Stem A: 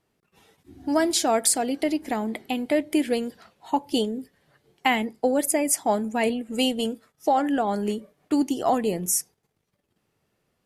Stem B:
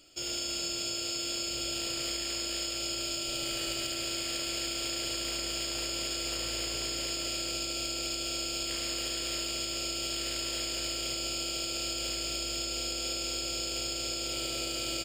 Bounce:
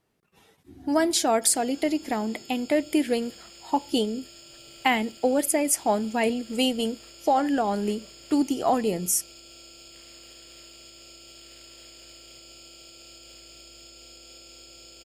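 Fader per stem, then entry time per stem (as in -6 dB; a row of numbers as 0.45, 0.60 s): -0.5, -14.0 dB; 0.00, 1.25 s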